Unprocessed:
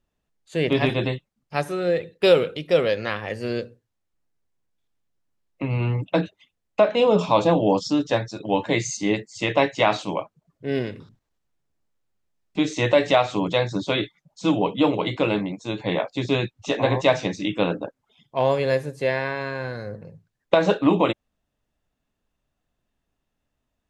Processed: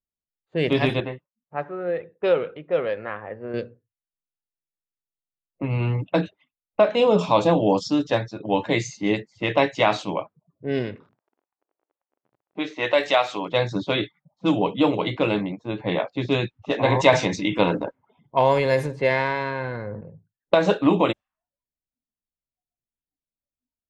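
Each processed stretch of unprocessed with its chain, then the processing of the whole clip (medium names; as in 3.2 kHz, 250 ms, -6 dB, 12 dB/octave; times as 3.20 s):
1.00–3.54 s: low-pass 1.7 kHz + bass shelf 390 Hz -10 dB
10.95–13.52 s: frequency weighting A + crackle 30 per s -38 dBFS
16.85–20.01 s: transient shaper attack +3 dB, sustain +7 dB + small resonant body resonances 950/2100 Hz, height 9 dB, ringing for 35 ms
whole clip: level-controlled noise filter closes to 710 Hz, open at -16.5 dBFS; spectral noise reduction 22 dB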